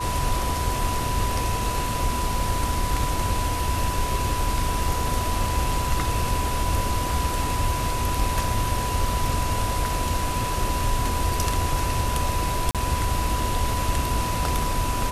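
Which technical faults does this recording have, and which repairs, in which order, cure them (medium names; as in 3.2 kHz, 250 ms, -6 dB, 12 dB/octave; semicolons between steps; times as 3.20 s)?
whine 990 Hz -28 dBFS
12.71–12.75 s: dropout 37 ms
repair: band-stop 990 Hz, Q 30; interpolate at 12.71 s, 37 ms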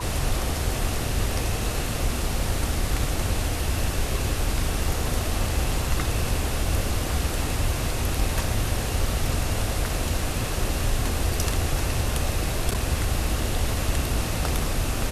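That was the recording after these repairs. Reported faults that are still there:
nothing left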